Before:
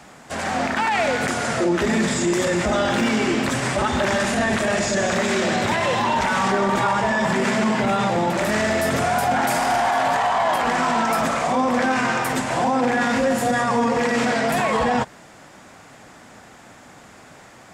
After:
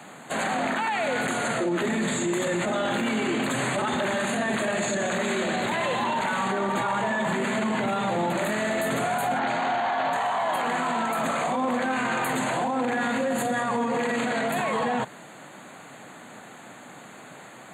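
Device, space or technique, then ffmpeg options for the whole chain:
PA system with an anti-feedback notch: -filter_complex "[0:a]asettb=1/sr,asplit=3[s0][s1][s2];[s0]atrim=end=9.394[s3];[s1]atrim=start=9.39:end=10.13,asetpts=PTS-STARTPTS,afade=t=in:d=0.004:c=qsin,afade=t=out:st=0.736:d=0.004:c=qsin,lowpass=f=5500:w=0.5412,lowpass=f=5500:w=1.3066[s4];[s2]atrim=start=10.126[s5];[s3][s4]acrossfade=d=0.004:c1=hsin:c2=qsin[s6];[s6][s5]acrossfade=d=0.004:c1=qsin:c2=hsin,highpass=f=130:w=0.5412,highpass=f=130:w=1.3066,asuperstop=centerf=5400:order=20:qfactor=3.1,alimiter=limit=0.106:level=0:latency=1:release=13,volume=1.12"

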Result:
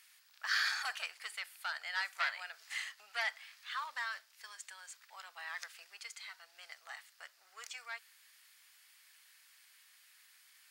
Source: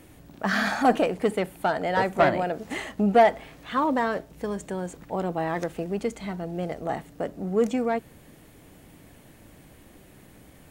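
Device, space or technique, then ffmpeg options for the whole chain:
headphones lying on a table: -af "highpass=f=1400:w=0.5412,highpass=f=1400:w=1.3066,equalizer=f=4800:t=o:w=0.49:g=9,volume=0.531"

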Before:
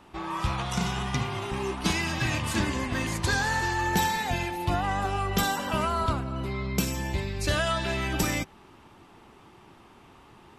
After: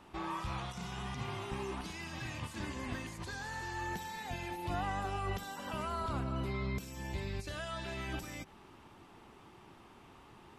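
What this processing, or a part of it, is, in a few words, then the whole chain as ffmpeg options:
de-esser from a sidechain: -filter_complex "[0:a]asplit=2[s0][s1];[s1]highpass=5800,apad=whole_len=466667[s2];[s0][s2]sidechaincompress=threshold=0.00224:ratio=3:attack=1.2:release=47,volume=0.631"

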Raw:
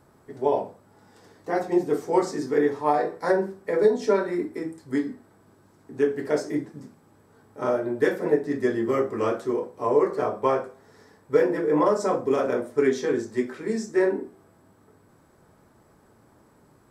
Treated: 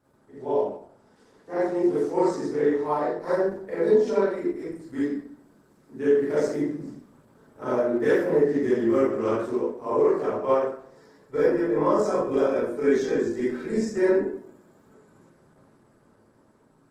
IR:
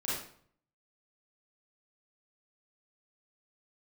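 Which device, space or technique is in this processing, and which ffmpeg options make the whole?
far-field microphone of a smart speaker: -filter_complex "[0:a]asettb=1/sr,asplit=3[s0][s1][s2];[s0]atrim=end=4.674[s3];[s1]atrim=start=4.67:end=5.94,asetpts=PTS-STARTPTS,afade=t=in:d=0.004:c=qsin,afade=t=out:st=1.266:d=0.004:c=qsin,highshelf=f=3200:g=2.5[s4];[s2]atrim=start=5.936[s5];[s3][s4]acrossfade=d=0.004:c1=hsin:c2=qsin[s6];[s6][s5]acrossfade=d=0.004:c1=qsin:c2=hsin[s7];[1:a]atrim=start_sample=2205[s8];[s7][s8]afir=irnorm=-1:irlink=0,highpass=92,dynaudnorm=f=500:g=7:m=6.68,volume=0.398" -ar 48000 -c:a libopus -b:a 16k

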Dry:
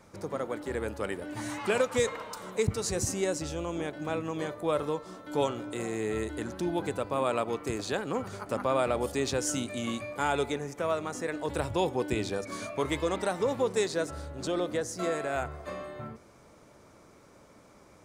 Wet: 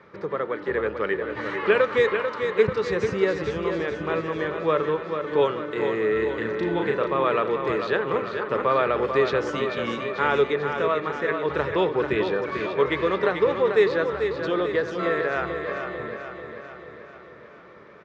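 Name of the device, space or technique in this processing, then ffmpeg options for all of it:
guitar cabinet: -filter_complex "[0:a]asettb=1/sr,asplit=3[s0][s1][s2];[s0]atrim=end=6.374[s3];[s1]atrim=start=6.37:end=7.15,asetpts=PTS-STARTPTS,afade=t=in:d=0.004:c=qsin,afade=t=out:st=0.776:d=0.004:c=qsin,asplit=2[s4][s5];[s5]adelay=36,volume=0.668[s6];[s4][s6]amix=inputs=2:normalize=0,atrim=end_sample=34398[s7];[s2]atrim=start=7.146[s8];[s3][s7]acrossfade=d=0.004:c1=hsin:c2=qsin[s9];[s9][s8]acrossfade=d=0.004:c1=qsin:c2=hsin,highpass=94,equalizer=f=100:t=q:w=4:g=-9,equalizer=f=260:t=q:w=4:g=-8,equalizer=f=420:t=q:w=4:g=7,equalizer=f=740:t=q:w=4:g=-6,equalizer=f=1200:t=q:w=4:g=5,equalizer=f=1800:t=q:w=4:g=8,lowpass=f=3700:w=0.5412,lowpass=f=3700:w=1.3066,aecho=1:1:441|882|1323|1764|2205|2646|3087:0.447|0.259|0.15|0.0872|0.0505|0.0293|0.017,volume=1.68"

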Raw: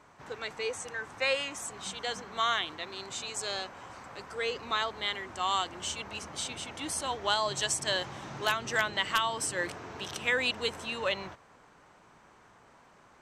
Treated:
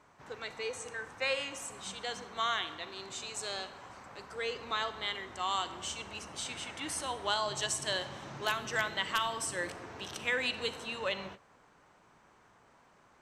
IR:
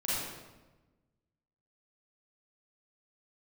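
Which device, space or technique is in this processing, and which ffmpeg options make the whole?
keyed gated reverb: -filter_complex "[0:a]asettb=1/sr,asplit=3[s0][s1][s2];[s0]atrim=end=6.464[s3];[s1]atrim=start=6.46:end=7.03,asetpts=PTS-STARTPTS,afade=t=in:d=0.004:c=qsin,afade=t=out:st=0.566:d=0.004:c=qsin,equalizer=f=1900:w=1.2:g=5.5[s4];[s2]atrim=start=7.026[s5];[s3][s4]acrossfade=d=0.004:c1=hsin:c2=qsin[s6];[s6][s5]acrossfade=d=0.004:c1=qsin:c2=hsin,asplit=3[s7][s8][s9];[1:a]atrim=start_sample=2205[s10];[s8][s10]afir=irnorm=-1:irlink=0[s11];[s9]apad=whole_len=582643[s12];[s11][s12]sidechaingate=range=0.0224:threshold=0.00501:ratio=16:detection=peak,volume=0.141[s13];[s7][s13]amix=inputs=2:normalize=0,volume=0.596"

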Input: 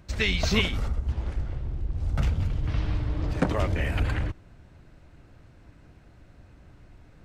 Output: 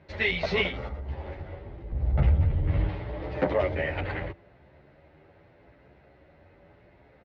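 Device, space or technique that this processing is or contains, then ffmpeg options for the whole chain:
barber-pole flanger into a guitar amplifier: -filter_complex "[0:a]asplit=2[s0][s1];[s1]adelay=10.7,afreqshift=0.8[s2];[s0][s2]amix=inputs=2:normalize=1,asoftclip=type=tanh:threshold=0.119,highpass=77,equalizer=f=110:t=q:w=4:g=-5,equalizer=f=230:t=q:w=4:g=-3,equalizer=f=400:t=q:w=4:g=7,equalizer=f=570:t=q:w=4:g=10,equalizer=f=830:t=q:w=4:g=7,equalizer=f=2000:t=q:w=4:g=8,lowpass=f=4100:w=0.5412,lowpass=f=4100:w=1.3066,asettb=1/sr,asplit=3[s3][s4][s5];[s3]atrim=end=1.924[s6];[s4]atrim=start=1.92:end=2.89,asetpts=PTS-STARTPTS,afade=t=in:d=0.004:c=qsin,afade=t=out:st=0.966:d=0.004:c=qsin,aemphasis=mode=reproduction:type=bsi[s7];[s5]atrim=start=2.886[s8];[s6][s7]acrossfade=d=0.004:c1=hsin:c2=qsin[s9];[s9][s8]acrossfade=d=0.004:c1=qsin:c2=hsin"

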